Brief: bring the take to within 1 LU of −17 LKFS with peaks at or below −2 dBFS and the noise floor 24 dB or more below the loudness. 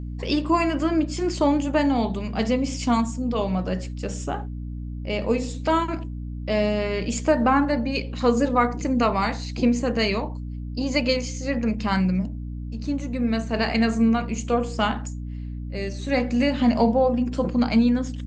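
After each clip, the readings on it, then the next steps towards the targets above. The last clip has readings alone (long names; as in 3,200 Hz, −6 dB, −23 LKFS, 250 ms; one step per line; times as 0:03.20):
mains hum 60 Hz; hum harmonics up to 300 Hz; level of the hum −29 dBFS; integrated loudness −23.5 LKFS; sample peak −7.0 dBFS; target loudness −17.0 LKFS
→ mains-hum notches 60/120/180/240/300 Hz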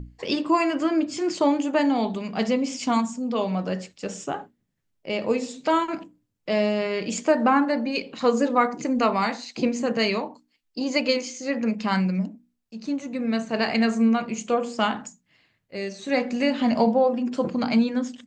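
mains hum none found; integrated loudness −24.5 LKFS; sample peak −7.0 dBFS; target loudness −17.0 LKFS
→ level +7.5 dB
brickwall limiter −2 dBFS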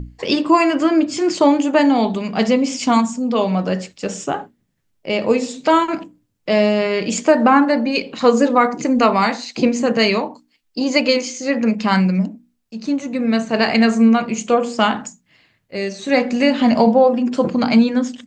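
integrated loudness −17.0 LKFS; sample peak −2.0 dBFS; background noise floor −67 dBFS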